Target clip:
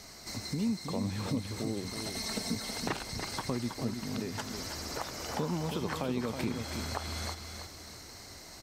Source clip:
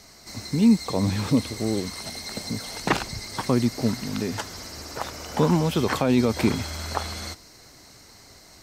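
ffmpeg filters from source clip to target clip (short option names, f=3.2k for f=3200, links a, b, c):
-filter_complex "[0:a]acompressor=threshold=-37dB:ratio=2.5,asettb=1/sr,asplit=3[a][b][c];[a]atrim=end=2.154[d];[b]atrim=start=2.15:end=2.55,asetpts=PTS-STARTPTS,afade=t=in:d=0.004:c=qsin,afade=t=out:st=0.396:d=0.004:c=qsin,aecho=1:1:4.5:0.95,atrim=end_sample=17640[e];[c]atrim=start=2.546[f];[d][e]acrossfade=d=0.004:c1=hsin:c2=qsin[g];[g][f]acrossfade=d=0.004:c1=qsin:c2=hsin,aecho=1:1:322|644|966|1288:0.447|0.161|0.0579|0.0208"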